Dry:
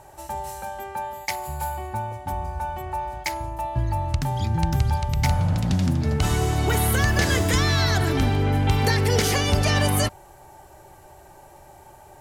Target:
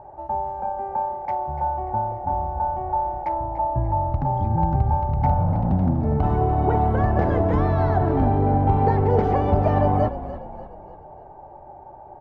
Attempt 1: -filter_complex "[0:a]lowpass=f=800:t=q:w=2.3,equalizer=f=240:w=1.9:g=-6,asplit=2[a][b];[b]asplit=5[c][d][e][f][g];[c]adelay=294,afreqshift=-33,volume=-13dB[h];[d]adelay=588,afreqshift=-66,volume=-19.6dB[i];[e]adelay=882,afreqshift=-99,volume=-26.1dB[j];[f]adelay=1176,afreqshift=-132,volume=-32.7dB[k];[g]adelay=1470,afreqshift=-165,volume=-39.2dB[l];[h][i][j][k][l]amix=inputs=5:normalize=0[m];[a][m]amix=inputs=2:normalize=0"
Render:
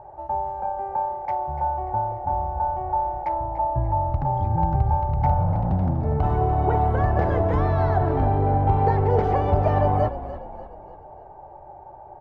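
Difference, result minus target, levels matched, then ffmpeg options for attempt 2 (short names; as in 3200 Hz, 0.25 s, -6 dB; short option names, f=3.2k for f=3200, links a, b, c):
250 Hz band -3.5 dB
-filter_complex "[0:a]lowpass=f=800:t=q:w=2.3,equalizer=f=240:w=1.9:g=2,asplit=2[a][b];[b]asplit=5[c][d][e][f][g];[c]adelay=294,afreqshift=-33,volume=-13dB[h];[d]adelay=588,afreqshift=-66,volume=-19.6dB[i];[e]adelay=882,afreqshift=-99,volume=-26.1dB[j];[f]adelay=1176,afreqshift=-132,volume=-32.7dB[k];[g]adelay=1470,afreqshift=-165,volume=-39.2dB[l];[h][i][j][k][l]amix=inputs=5:normalize=0[m];[a][m]amix=inputs=2:normalize=0"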